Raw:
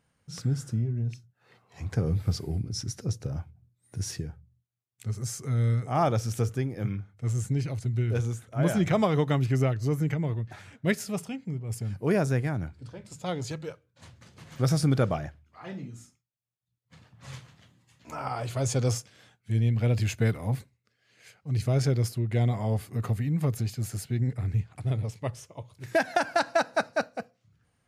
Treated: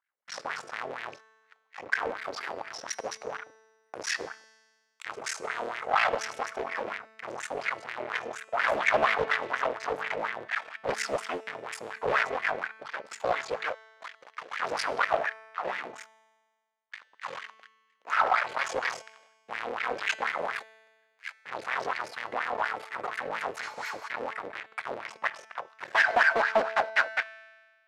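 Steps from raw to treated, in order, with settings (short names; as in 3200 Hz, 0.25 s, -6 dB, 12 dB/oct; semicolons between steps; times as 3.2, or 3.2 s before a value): cycle switcher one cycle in 3, muted; sample leveller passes 5; HPF 140 Hz 12 dB/oct; tilt shelf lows -6.5 dB, about 880 Hz; spectral repair 23.66–24.05, 860–12000 Hz before; wah 4.2 Hz 470–2000 Hz, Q 3.3; resonator 220 Hz, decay 1.5 s, mix 60%; overdrive pedal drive 10 dB, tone 5700 Hz, clips at -18 dBFS; Doppler distortion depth 0.37 ms; gain +7 dB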